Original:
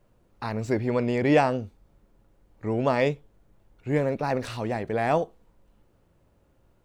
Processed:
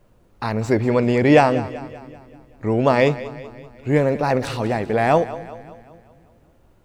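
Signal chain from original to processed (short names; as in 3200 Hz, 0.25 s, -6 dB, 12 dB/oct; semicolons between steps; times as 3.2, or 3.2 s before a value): split-band echo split 320 Hz, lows 0.262 s, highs 0.192 s, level -15.5 dB; gain +7 dB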